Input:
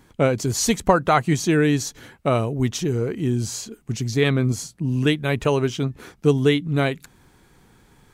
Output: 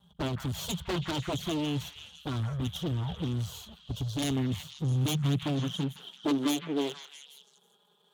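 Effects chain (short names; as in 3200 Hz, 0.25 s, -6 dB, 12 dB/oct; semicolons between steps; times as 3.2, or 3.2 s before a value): half-wave rectifier; EQ curve 120 Hz 0 dB, 170 Hz +9 dB, 290 Hz -19 dB, 430 Hz -7 dB, 890 Hz -3 dB, 1300 Hz -8 dB, 2200 Hz -24 dB, 3300 Hz +4 dB, 4800 Hz -19 dB, 7800 Hz -22 dB; in parallel at +2 dB: vocal rider 2 s; on the sum: envelope flanger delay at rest 5.1 ms, full sweep at -9 dBFS; pre-emphasis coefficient 0.8; wavefolder -30 dBFS; high-pass sweep 68 Hz -> 420 Hz, 4.34–7.01; on a send: delay with a stepping band-pass 0.165 s, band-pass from 1600 Hz, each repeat 0.7 oct, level -4 dB; on the sum: gain +4.5 dB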